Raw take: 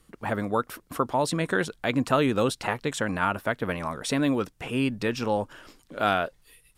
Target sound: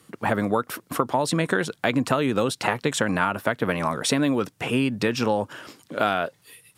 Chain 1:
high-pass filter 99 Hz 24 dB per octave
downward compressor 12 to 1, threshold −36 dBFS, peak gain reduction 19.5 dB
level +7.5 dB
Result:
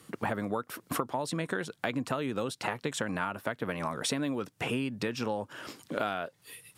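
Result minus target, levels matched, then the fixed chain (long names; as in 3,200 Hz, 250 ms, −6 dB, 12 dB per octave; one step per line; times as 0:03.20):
downward compressor: peak gain reduction +10 dB
high-pass filter 99 Hz 24 dB per octave
downward compressor 12 to 1, threshold −25 dBFS, peak gain reduction 9.5 dB
level +7.5 dB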